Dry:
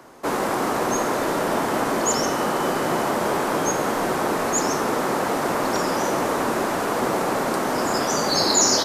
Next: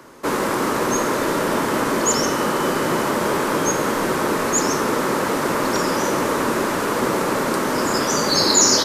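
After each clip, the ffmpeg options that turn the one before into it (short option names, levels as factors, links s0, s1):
-af "equalizer=f=730:t=o:w=0.33:g=-10,volume=1.5"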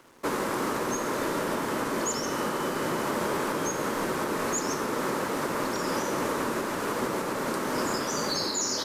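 -af "aeval=exprs='sgn(val(0))*max(abs(val(0))-0.00447,0)':c=same,alimiter=limit=0.211:level=0:latency=1:release=373,volume=0.562"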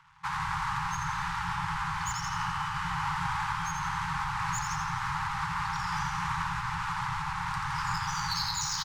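-filter_complex "[0:a]adynamicsmooth=sensitivity=3:basefreq=3600,asplit=8[s0][s1][s2][s3][s4][s5][s6][s7];[s1]adelay=84,afreqshift=-110,volume=0.501[s8];[s2]adelay=168,afreqshift=-220,volume=0.269[s9];[s3]adelay=252,afreqshift=-330,volume=0.146[s10];[s4]adelay=336,afreqshift=-440,volume=0.0785[s11];[s5]adelay=420,afreqshift=-550,volume=0.0427[s12];[s6]adelay=504,afreqshift=-660,volume=0.0229[s13];[s7]adelay=588,afreqshift=-770,volume=0.0124[s14];[s0][s8][s9][s10][s11][s12][s13][s14]amix=inputs=8:normalize=0,afftfilt=real='re*(1-between(b*sr/4096,180,780))':imag='im*(1-between(b*sr/4096,180,780))':win_size=4096:overlap=0.75"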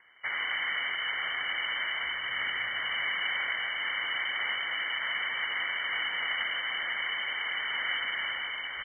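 -af "lowpass=f=2600:t=q:w=0.5098,lowpass=f=2600:t=q:w=0.6013,lowpass=f=2600:t=q:w=0.9,lowpass=f=2600:t=q:w=2.563,afreqshift=-3100"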